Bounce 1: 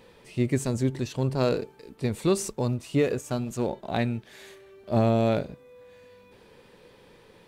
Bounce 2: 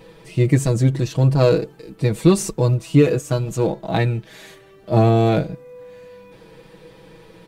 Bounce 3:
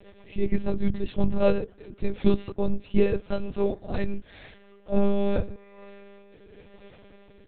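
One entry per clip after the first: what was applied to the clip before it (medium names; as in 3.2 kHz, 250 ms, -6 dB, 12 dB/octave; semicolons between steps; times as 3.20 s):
bass shelf 360 Hz +5.5 dB; comb 6.2 ms, depth 83%; trim +4 dB
vibrato 2.1 Hz 39 cents; rotary cabinet horn 8 Hz, later 0.85 Hz, at 1.72 s; monotone LPC vocoder at 8 kHz 200 Hz; trim -3.5 dB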